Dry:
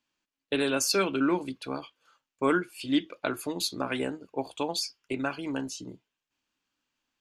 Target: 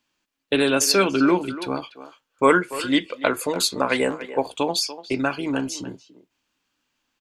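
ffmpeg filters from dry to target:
ffmpeg -i in.wav -filter_complex "[0:a]asettb=1/sr,asplit=3[link_01][link_02][link_03];[link_01]atrim=end=2.434[link_04];[link_02]atrim=start=2.43:end=4.47,asetpts=PTS-STARTPTS,afade=type=in:duration=0.004:curve=qsin,afade=type=out:start_time=2.036:duration=0.004:curve=qsin,equalizer=frequency=125:width_type=o:width=0.33:gain=-5,equalizer=frequency=315:width_type=o:width=0.33:gain=-5,equalizer=frequency=500:width_type=o:width=0.33:gain=7,equalizer=frequency=1000:width_type=o:width=0.33:gain=6,equalizer=frequency=2000:width_type=o:width=0.33:gain=7,equalizer=frequency=8000:width_type=o:width=0.33:gain=7[link_05];[link_03]atrim=start=4.466[link_06];[link_04][link_05]acrossfade=duration=0.004:curve1=hsin:curve2=qsin[link_07];[link_07][link_06]acrossfade=duration=0.004:curve1=qsin:curve2=hsin,asplit=2[link_08][link_09];[link_09]adelay=290,highpass=300,lowpass=3400,asoftclip=type=hard:threshold=-18dB,volume=-13dB[link_10];[link_08][link_10]amix=inputs=2:normalize=0,volume=7.5dB" out.wav

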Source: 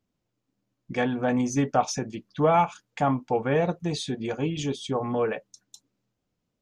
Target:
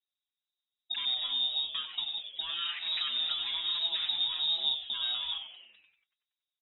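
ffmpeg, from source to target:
ffmpeg -i in.wav -filter_complex "[0:a]asettb=1/sr,asplit=3[link_01][link_02][link_03];[link_01]atrim=end=2.574[link_04];[link_02]atrim=start=2.57:end=4.74,asetpts=PTS-STARTPTS,afade=type=in:duration=0.004:curve=qsin,afade=type=out:start_time=2.166:duration=0.004:curve=qsin,aeval=exprs='val(0)+0.5*0.0447*sgn(val(0))':channel_layout=same[link_05];[link_03]atrim=start=4.736[link_06];[link_04][link_05]acrossfade=duration=0.004:curve1=hsin:curve2=qsin[link_07];[link_07][link_06]acrossfade=duration=0.004:curve1=qsin:curve2=hsin,afwtdn=0.0251,acontrast=88,alimiter=limit=-16dB:level=0:latency=1,acrossover=split=170[link_08][link_09];[link_09]acompressor=threshold=-28dB:ratio=6[link_10];[link_08][link_10]amix=inputs=2:normalize=0,acrusher=samples=13:mix=1:aa=0.000001,asplit=8[link_11][link_12][link_13][link_14][link_15][link_16][link_17][link_18];[link_12]adelay=94,afreqshift=150,volume=-9dB[link_19];[link_13]adelay=188,afreqshift=300,volume=-14dB[link_20];[link_14]adelay=282,afreqshift=450,volume=-19.1dB[link_21];[link_15]adelay=376,afreqshift=600,volume=-24.1dB[link_22];[link_16]adelay=470,afreqshift=750,volume=-29.1dB[link_23];[link_17]adelay=564,afreqshift=900,volume=-34.2dB[link_24];[link_18]adelay=658,afreqshift=1050,volume=-39.2dB[link_25];[link_11][link_19][link_20][link_21][link_22][link_23][link_24][link_25]amix=inputs=8:normalize=0,lowpass=frequency=3300:width_type=q:width=0.5098,lowpass=frequency=3300:width_type=q:width=0.6013,lowpass=frequency=3300:width_type=q:width=0.9,lowpass=frequency=3300:width_type=q:width=2.563,afreqshift=-3900,asplit=2[link_26][link_27];[link_27]adelay=5.7,afreqshift=-2.8[link_28];[link_26][link_28]amix=inputs=2:normalize=1,volume=-3dB" out.wav

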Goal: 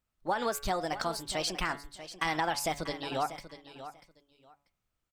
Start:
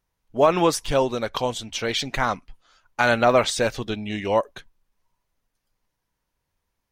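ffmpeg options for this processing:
ffmpeg -i in.wav -af "bandreject=frequency=105.3:width_type=h:width=4,bandreject=frequency=210.6:width_type=h:width=4,bandreject=frequency=315.9:width_type=h:width=4,bandreject=frequency=421.2:width_type=h:width=4,bandreject=frequency=526.5:width_type=h:width=4,bandreject=frequency=631.8:width_type=h:width=4,bandreject=frequency=737.1:width_type=h:width=4,bandreject=frequency=842.4:width_type=h:width=4,bandreject=frequency=947.7:width_type=h:width=4,bandreject=frequency=1053:width_type=h:width=4,bandreject=frequency=1158.3:width_type=h:width=4,bandreject=frequency=1263.6:width_type=h:width=4,bandreject=frequency=1368.9:width_type=h:width=4,bandreject=frequency=1474.2:width_type=h:width=4,bandreject=frequency=1579.5:width_type=h:width=4,bandreject=frequency=1684.8:width_type=h:width=4,bandreject=frequency=1790.1:width_type=h:width=4,bandreject=frequency=1895.4:width_type=h:width=4,bandreject=frequency=2000.7:width_type=h:width=4,bandreject=frequency=2106:width_type=h:width=4,acompressor=threshold=-20dB:ratio=6,aecho=1:1:864|1728:0.224|0.0403,asetrate=59535,aresample=44100,volume=-6.5dB" out.wav

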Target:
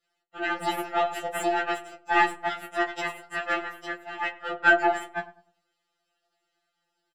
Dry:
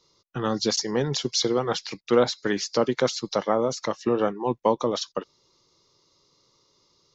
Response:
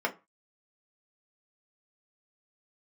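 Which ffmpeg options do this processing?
-filter_complex "[0:a]asettb=1/sr,asplit=3[link_01][link_02][link_03];[link_01]atrim=end=2.484[link_04];[link_02]atrim=start=2.48:end=4.51,asetpts=PTS-STARTPTS,afade=type=in:duration=0.004:curve=qsin,afade=type=out:start_time=2.026:duration=0.004:curve=qsin,highpass=560[link_05];[link_03]atrim=start=4.506[link_06];[link_04][link_05]acrossfade=duration=0.004:curve1=hsin:curve2=qsin[link_07];[link_07][link_06]acrossfade=duration=0.004:curve1=qsin:curve2=hsin,aeval=exprs='0.447*(cos(1*acos(clip(val(0)/0.447,-1,1)))-cos(1*PI/2))+0.0501*(cos(3*acos(clip(val(0)/0.447,-1,1)))-cos(3*PI/2))+0.00631*(cos(5*acos(clip(val(0)/0.447,-1,1)))-cos(5*PI/2))+0.0355*(cos(7*acos(clip(val(0)/0.447,-1,1)))-cos(7*PI/2))':channel_layout=same,asoftclip=type=tanh:threshold=-14dB,flanger=delay=6.7:depth=4.8:regen=-16:speed=0.65:shape=triangular,aeval=exprs='abs(val(0))':channel_layout=same,asplit=2[link_08][link_09];[link_09]adelay=100,lowpass=frequency=1000:poles=1,volume=-14.5dB,asplit=2[link_10][link_11];[link_11]adelay=100,lowpass=frequency=1000:poles=1,volume=0.39,asplit=2[link_12][link_13];[link_13]adelay=100,lowpass=frequency=1000:poles=1,volume=0.39,asplit=2[link_14][link_15];[link_15]adelay=100,lowpass=frequency=1000:poles=1,volume=0.39[link_16];[link_08][link_10][link_12][link_14][link_16]amix=inputs=5:normalize=0[link_17];[1:a]atrim=start_sample=2205,asetrate=61740,aresample=44100[link_18];[link_17][link_18]afir=irnorm=-1:irlink=0,afftfilt=real='re*2.83*eq(mod(b,8),0)':imag='im*2.83*eq(mod(b,8),0)':win_size=2048:overlap=0.75,volume=8.5dB"

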